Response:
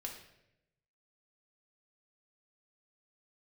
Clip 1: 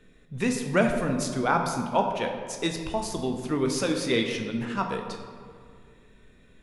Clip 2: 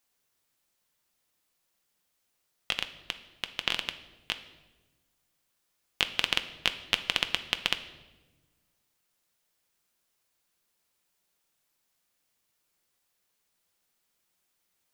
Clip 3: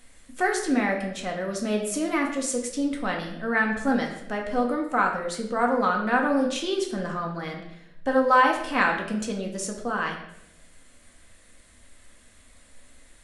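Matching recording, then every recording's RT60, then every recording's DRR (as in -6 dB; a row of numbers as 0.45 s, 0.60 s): 3; 2.2 s, 1.2 s, 0.85 s; 3.0 dB, 8.5 dB, 0.5 dB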